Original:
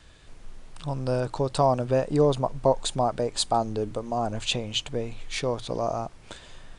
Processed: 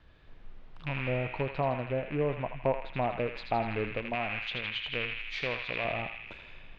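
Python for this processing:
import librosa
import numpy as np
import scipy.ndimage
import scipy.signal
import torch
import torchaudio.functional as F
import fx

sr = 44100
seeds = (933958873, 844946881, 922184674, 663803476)

y = fx.rattle_buzz(x, sr, strikes_db=-31.0, level_db=-15.0)
y = fx.env_lowpass_down(y, sr, base_hz=1500.0, full_db=-20.0)
y = fx.tilt_shelf(y, sr, db=-6.0, hz=970.0, at=(4.15, 5.85))
y = fx.rider(y, sr, range_db=10, speed_s=0.5)
y = fx.air_absorb(y, sr, metres=310.0)
y = fx.echo_banded(y, sr, ms=81, feedback_pct=76, hz=2600.0, wet_db=-3.0)
y = y * librosa.db_to_amplitude(-5.5)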